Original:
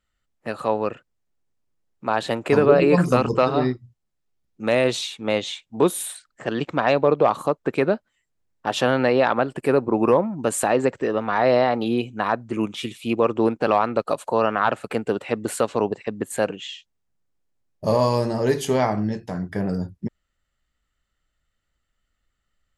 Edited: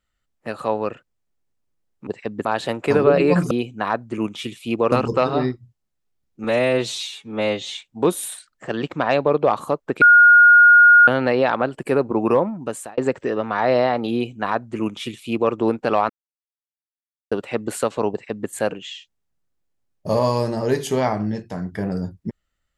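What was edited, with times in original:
4.65–5.52 stretch 1.5×
7.79–8.85 bleep 1430 Hz -6.5 dBFS
10.26–10.75 fade out
11.9–13.31 copy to 3.13
13.87–15.09 mute
15.89–16.27 copy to 2.07

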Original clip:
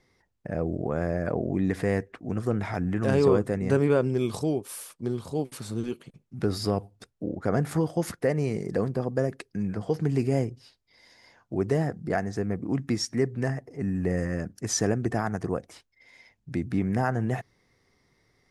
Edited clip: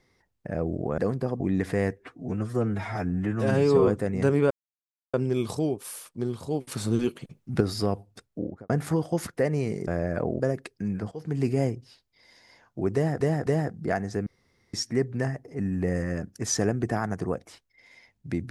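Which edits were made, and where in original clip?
0.98–1.5 swap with 8.72–9.14
2.1–3.35 stretch 1.5×
3.98 insert silence 0.63 s
5.56–6.45 gain +6 dB
7.26–7.54 studio fade out
9.86–10.19 fade in, from -18.5 dB
11.69–11.95 loop, 3 plays
12.49–12.96 room tone

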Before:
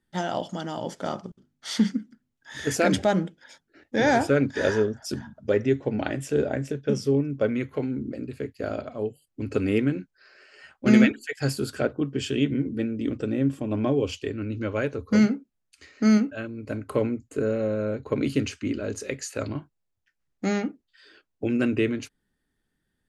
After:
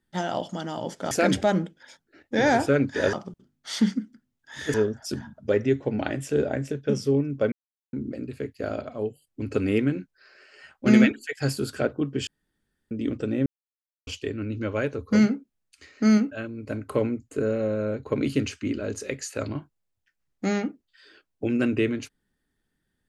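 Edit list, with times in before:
1.11–2.72 move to 4.74
7.52–7.93 mute
12.27–12.91 room tone
13.46–14.07 mute

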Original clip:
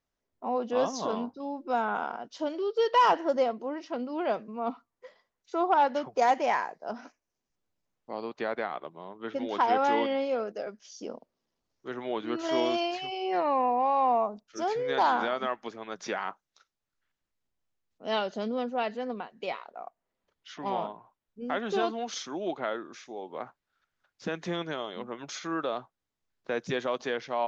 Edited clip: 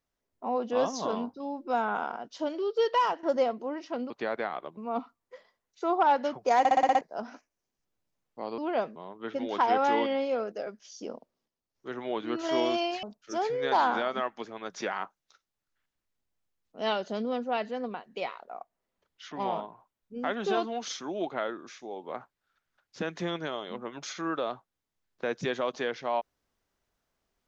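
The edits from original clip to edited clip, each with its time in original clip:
2.84–3.23 fade out, to -15 dB
4.1–4.48 swap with 8.29–8.96
6.3 stutter in place 0.06 s, 7 plays
11.08–12.15 dip -9.5 dB, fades 0.40 s logarithmic
13.03–14.29 cut

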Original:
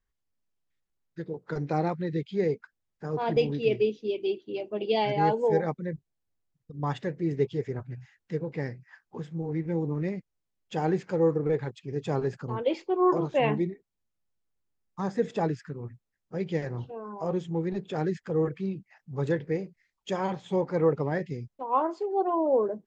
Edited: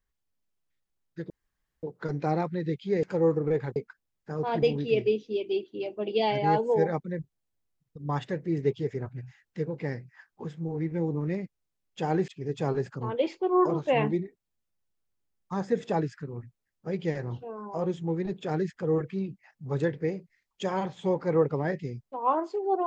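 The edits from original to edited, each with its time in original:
1.3 insert room tone 0.53 s
11.02–11.75 move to 2.5

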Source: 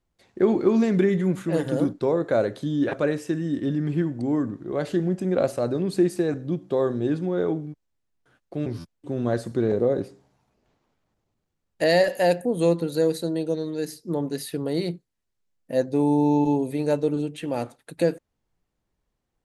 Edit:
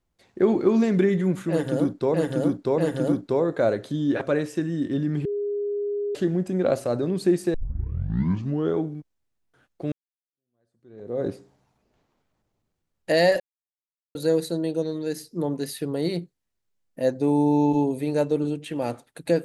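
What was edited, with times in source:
1.5–2.14 loop, 3 plays
3.97–4.87 bleep 409 Hz -24 dBFS
6.26 tape start 1.24 s
8.64–9.97 fade in exponential
12.12–12.87 mute

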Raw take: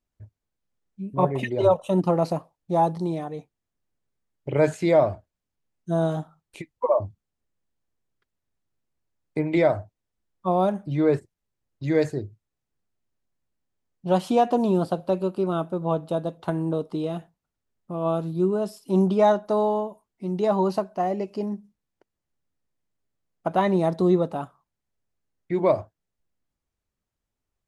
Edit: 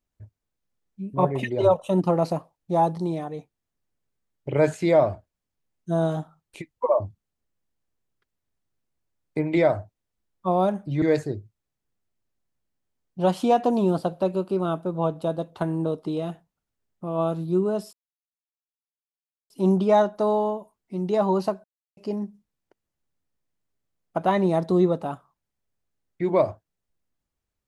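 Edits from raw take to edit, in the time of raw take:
11.02–11.89 cut
18.8 insert silence 1.57 s
20.94–21.27 mute

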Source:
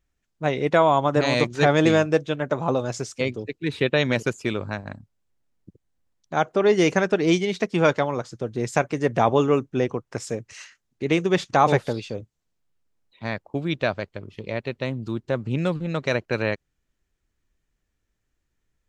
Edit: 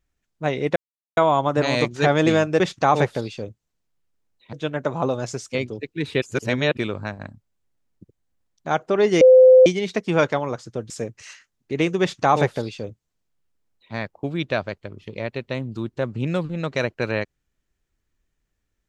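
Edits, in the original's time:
0.76 insert silence 0.41 s
3.88–4.43 reverse
6.87–7.32 bleep 514 Hz -6.5 dBFS
8.56–10.21 cut
11.32–13.25 copy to 2.19

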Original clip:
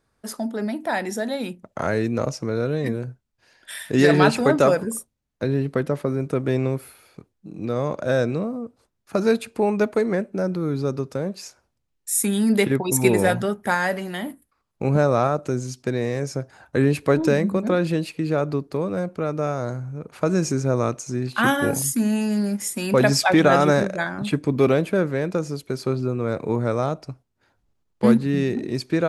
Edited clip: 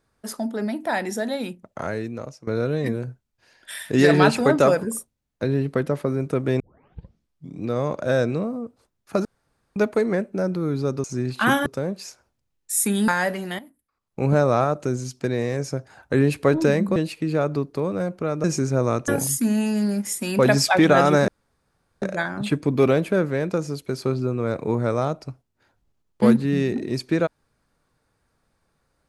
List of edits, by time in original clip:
1.33–2.47 fade out, to -18 dB
6.6 tape start 1.03 s
9.25–9.76 room tone
12.46–13.71 cut
14.22–14.89 fade in quadratic, from -15 dB
17.59–17.93 cut
19.41–20.37 cut
21.01–21.63 move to 11.04
23.83 insert room tone 0.74 s

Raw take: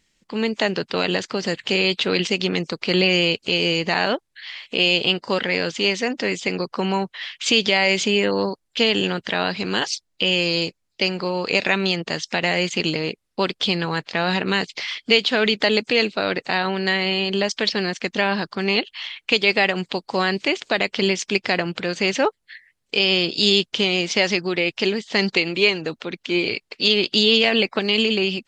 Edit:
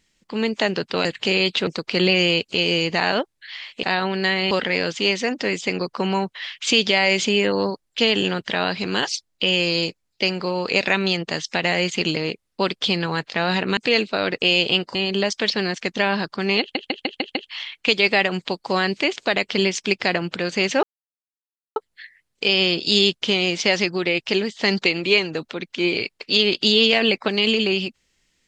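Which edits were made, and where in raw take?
1.05–1.49 cut
2.11–2.61 cut
4.77–5.3 swap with 16.46–17.14
14.56–15.81 cut
18.79 stutter 0.15 s, 6 plays
22.27 insert silence 0.93 s

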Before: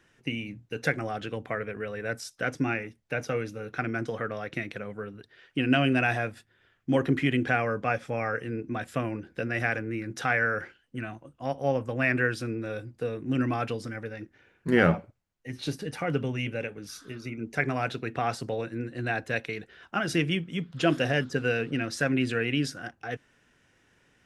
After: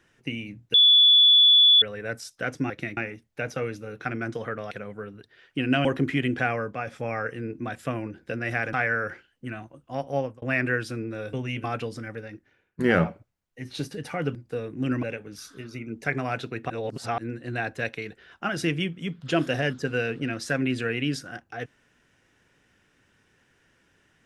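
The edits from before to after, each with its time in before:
0.74–1.82 bleep 3440 Hz -12.5 dBFS
4.44–4.71 move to 2.7
5.85–6.94 cut
7.64–7.96 fade out, to -6.5 dB
9.82–10.24 cut
11.68–11.93 fade out
12.84–13.52 swap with 16.23–16.54
14.1–14.67 fade out linear, to -16 dB
18.21–18.69 reverse

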